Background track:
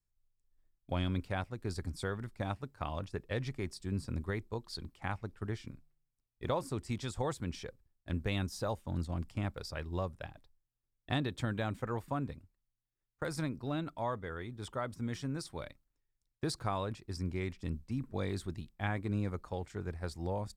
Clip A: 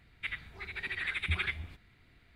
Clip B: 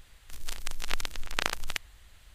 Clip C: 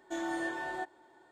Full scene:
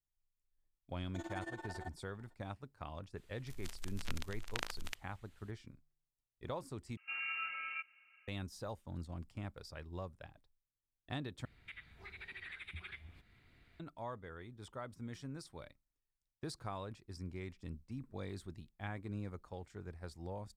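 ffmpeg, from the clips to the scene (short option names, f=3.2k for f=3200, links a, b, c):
-filter_complex "[3:a]asplit=2[a][b];[0:a]volume=-8.5dB[c];[a]tremolo=f=18:d=0.9[d];[b]lowpass=f=2.6k:t=q:w=0.5098,lowpass=f=2.6k:t=q:w=0.6013,lowpass=f=2.6k:t=q:w=0.9,lowpass=f=2.6k:t=q:w=2.563,afreqshift=-3100[e];[1:a]acompressor=threshold=-42dB:ratio=3:attack=0.98:release=337:knee=1:detection=rms[f];[c]asplit=3[g][h][i];[g]atrim=end=6.974[j];[e]atrim=end=1.31,asetpts=PTS-STARTPTS,volume=-5.5dB[k];[h]atrim=start=8.276:end=11.454[l];[f]atrim=end=2.35,asetpts=PTS-STARTPTS,volume=-3.5dB[m];[i]atrim=start=13.796[n];[d]atrim=end=1.31,asetpts=PTS-STARTPTS,volume=-7dB,afade=t=in:d=0.004:c=hsin,afade=t=out:st=1.306:d=0.004:c=hsin,adelay=1040[o];[2:a]atrim=end=2.34,asetpts=PTS-STARTPTS,volume=-12dB,afade=t=in:d=0.004:c=hsin,afade=t=out:st=2.336:d=0.004:c=hsin,adelay=139797S[p];[j][k]acrossfade=d=0.004:c1=hsin:c2=hsin[q];[q][l]acrossfade=d=0.004:c1=hsin:c2=hsin[r];[r][m]acrossfade=d=0.004:c1=hsin:c2=hsin[s];[s][n]acrossfade=d=0.004:c1=hsin:c2=hsin[t];[t][o][p]amix=inputs=3:normalize=0"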